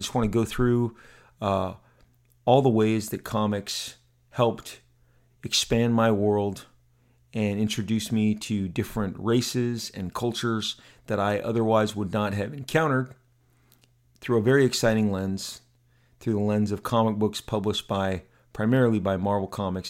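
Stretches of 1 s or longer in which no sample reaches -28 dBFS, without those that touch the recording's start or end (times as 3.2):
13.04–14.25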